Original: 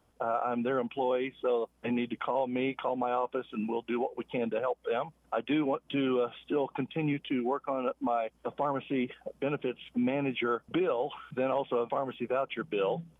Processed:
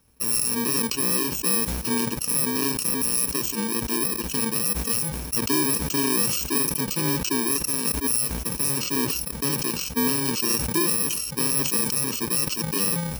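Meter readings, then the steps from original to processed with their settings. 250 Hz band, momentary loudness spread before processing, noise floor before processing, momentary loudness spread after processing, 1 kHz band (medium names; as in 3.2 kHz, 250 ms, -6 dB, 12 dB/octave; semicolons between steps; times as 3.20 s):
+5.0 dB, 5 LU, -68 dBFS, 3 LU, -0.5 dB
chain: bit-reversed sample order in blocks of 64 samples; wow and flutter 16 cents; decay stretcher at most 32 dB/s; trim +6.5 dB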